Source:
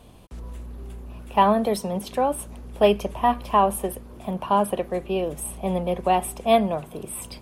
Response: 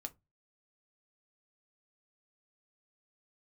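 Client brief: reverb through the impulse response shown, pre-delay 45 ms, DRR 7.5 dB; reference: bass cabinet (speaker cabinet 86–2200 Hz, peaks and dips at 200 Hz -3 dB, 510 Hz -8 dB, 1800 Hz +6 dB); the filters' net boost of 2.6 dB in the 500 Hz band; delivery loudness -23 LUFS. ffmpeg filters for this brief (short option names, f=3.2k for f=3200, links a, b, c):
-filter_complex "[0:a]equalizer=f=500:t=o:g=7.5,asplit=2[a][b];[1:a]atrim=start_sample=2205,adelay=45[c];[b][c]afir=irnorm=-1:irlink=0,volume=-4dB[d];[a][d]amix=inputs=2:normalize=0,highpass=f=86:w=0.5412,highpass=f=86:w=1.3066,equalizer=f=200:t=q:w=4:g=-3,equalizer=f=510:t=q:w=4:g=-8,equalizer=f=1.8k:t=q:w=4:g=6,lowpass=f=2.2k:w=0.5412,lowpass=f=2.2k:w=1.3066,volume=-2dB"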